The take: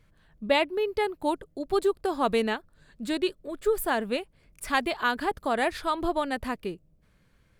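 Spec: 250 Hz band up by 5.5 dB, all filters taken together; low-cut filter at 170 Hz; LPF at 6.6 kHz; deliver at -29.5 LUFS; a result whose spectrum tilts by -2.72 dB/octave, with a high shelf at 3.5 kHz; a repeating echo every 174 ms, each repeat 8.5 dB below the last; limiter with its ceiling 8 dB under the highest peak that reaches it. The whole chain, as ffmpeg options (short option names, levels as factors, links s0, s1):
-af "highpass=170,lowpass=6600,equalizer=f=250:t=o:g=8,highshelf=f=3500:g=5,alimiter=limit=0.15:level=0:latency=1,aecho=1:1:174|348|522|696:0.376|0.143|0.0543|0.0206,volume=0.75"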